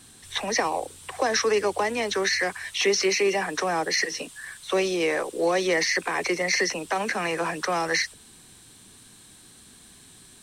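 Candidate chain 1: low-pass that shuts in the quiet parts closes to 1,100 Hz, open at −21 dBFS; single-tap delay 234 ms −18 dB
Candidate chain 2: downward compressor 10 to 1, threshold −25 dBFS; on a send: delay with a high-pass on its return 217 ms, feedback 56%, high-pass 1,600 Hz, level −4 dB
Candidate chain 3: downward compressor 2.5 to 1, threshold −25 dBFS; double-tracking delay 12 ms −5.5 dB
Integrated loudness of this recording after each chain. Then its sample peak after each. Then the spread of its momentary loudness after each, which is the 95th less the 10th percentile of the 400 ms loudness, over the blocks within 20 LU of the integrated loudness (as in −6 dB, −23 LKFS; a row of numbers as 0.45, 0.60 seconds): −25.0, −28.5, −27.0 LKFS; −10.5, −13.0, −12.5 dBFS; 9, 19, 8 LU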